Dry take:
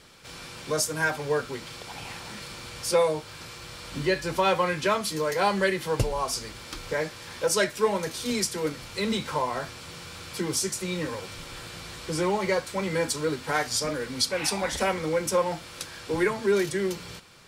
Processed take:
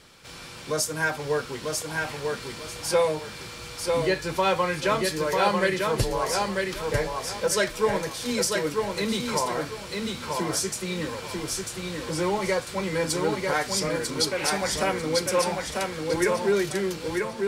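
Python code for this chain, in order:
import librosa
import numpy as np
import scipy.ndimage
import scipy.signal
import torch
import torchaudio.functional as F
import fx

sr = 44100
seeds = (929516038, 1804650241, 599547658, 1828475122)

y = x + fx.echo_feedback(x, sr, ms=945, feedback_pct=27, wet_db=-3.5, dry=0)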